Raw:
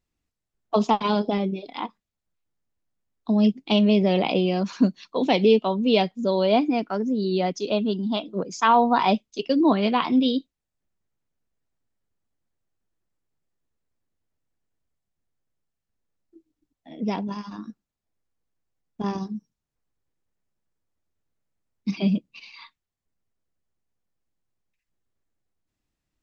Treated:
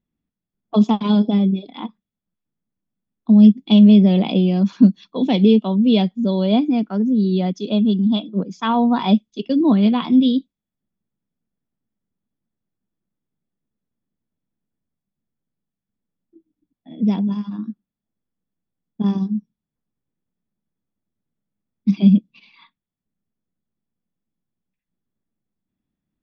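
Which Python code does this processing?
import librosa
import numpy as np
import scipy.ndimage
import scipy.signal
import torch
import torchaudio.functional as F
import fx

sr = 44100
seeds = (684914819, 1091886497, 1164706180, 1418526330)

y = fx.env_lowpass(x, sr, base_hz=2400.0, full_db=-18.0)
y = fx.small_body(y, sr, hz=(200.0, 3400.0), ring_ms=30, db=15)
y = y * librosa.db_to_amplitude(-4.5)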